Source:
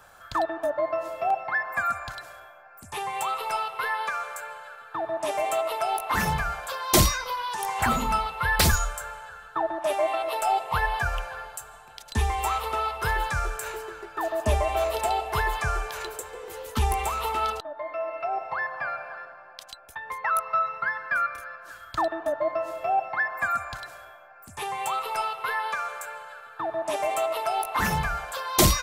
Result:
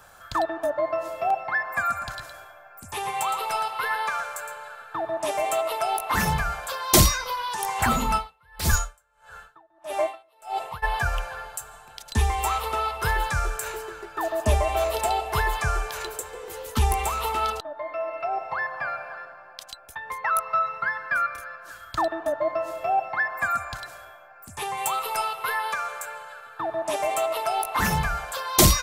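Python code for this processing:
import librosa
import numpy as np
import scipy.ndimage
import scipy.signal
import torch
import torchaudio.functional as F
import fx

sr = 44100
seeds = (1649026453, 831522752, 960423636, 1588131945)

y = fx.echo_single(x, sr, ms=114, db=-8.0, at=(1.95, 5.01), fade=0.02)
y = fx.tremolo_db(y, sr, hz=1.6, depth_db=35, at=(8.17, 10.82), fade=0.02)
y = fx.high_shelf(y, sr, hz=9600.0, db=9.5, at=(24.77, 25.74))
y = fx.bass_treble(y, sr, bass_db=2, treble_db=3)
y = y * 10.0 ** (1.0 / 20.0)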